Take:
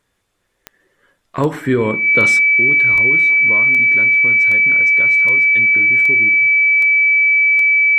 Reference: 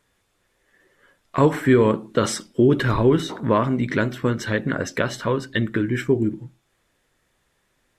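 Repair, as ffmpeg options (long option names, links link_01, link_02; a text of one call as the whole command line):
ffmpeg -i in.wav -af "adeclick=threshold=4,bandreject=frequency=2300:width=30,asetnsamples=nb_out_samples=441:pad=0,asendcmd='2.39 volume volume 10dB',volume=0dB" out.wav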